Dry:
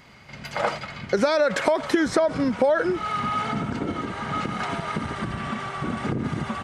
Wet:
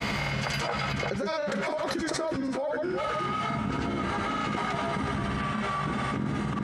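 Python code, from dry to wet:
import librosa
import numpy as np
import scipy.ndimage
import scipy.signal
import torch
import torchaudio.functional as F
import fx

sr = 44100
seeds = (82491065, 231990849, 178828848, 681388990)

p1 = fx.comb_fb(x, sr, f0_hz=68.0, decay_s=0.16, harmonics='all', damping=0.0, mix_pct=90)
p2 = fx.granulator(p1, sr, seeds[0], grain_ms=100.0, per_s=20.0, spray_ms=100.0, spread_st=0)
p3 = p2 + fx.echo_single(p2, sr, ms=367, db=-12.5, dry=0)
p4 = fx.env_flatten(p3, sr, amount_pct=100)
y = F.gain(torch.from_numpy(p4), -8.0).numpy()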